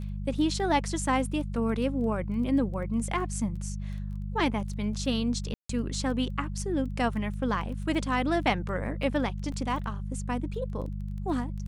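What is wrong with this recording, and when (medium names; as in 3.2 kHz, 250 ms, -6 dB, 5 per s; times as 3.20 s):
crackle 11 per s -37 dBFS
hum 50 Hz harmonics 4 -34 dBFS
5.54–5.69 s: dropout 154 ms
9.52 s: dropout 3.4 ms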